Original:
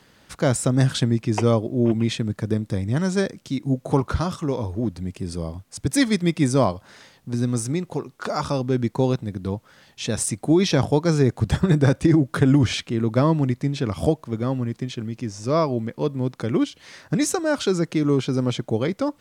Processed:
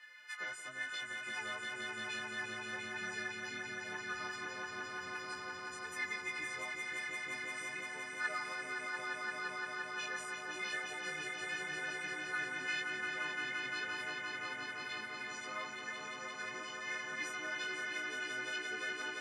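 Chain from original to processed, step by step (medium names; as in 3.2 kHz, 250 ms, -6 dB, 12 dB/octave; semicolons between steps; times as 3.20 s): partials quantised in pitch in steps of 3 st; in parallel at -2 dB: peak limiter -14 dBFS, peak gain reduction 10 dB; on the sum: compression 3:1, threshold -25 dBFS, peak gain reduction 12.5 dB; wavefolder -15.5 dBFS; flange 0.22 Hz, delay 1.6 ms, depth 4.8 ms, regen +72%; band-pass filter 1.9 kHz, Q 4.3; flange 1 Hz, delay 9.6 ms, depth 7.8 ms, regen +19%; on a send: echo with a slow build-up 173 ms, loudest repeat 5, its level -6 dB; on the sum: trim +5 dB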